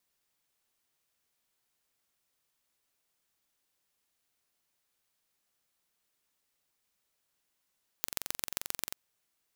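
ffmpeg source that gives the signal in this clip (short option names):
-f lavfi -i "aevalsrc='0.668*eq(mod(n,1951),0)*(0.5+0.5*eq(mod(n,5853),0))':d=0.9:s=44100"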